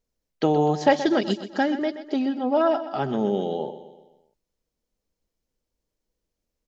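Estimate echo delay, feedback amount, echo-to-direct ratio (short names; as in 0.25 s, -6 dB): 0.126 s, 50%, -11.5 dB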